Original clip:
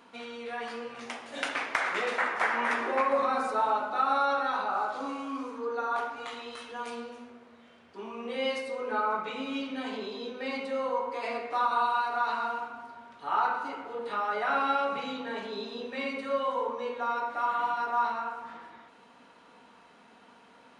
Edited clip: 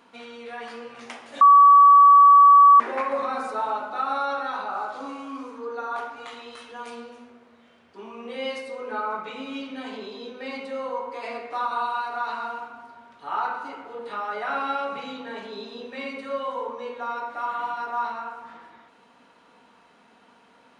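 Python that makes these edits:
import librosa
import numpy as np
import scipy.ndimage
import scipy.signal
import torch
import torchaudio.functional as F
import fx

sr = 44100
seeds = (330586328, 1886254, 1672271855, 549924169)

y = fx.edit(x, sr, fx.bleep(start_s=1.41, length_s=1.39, hz=1140.0, db=-8.5), tone=tone)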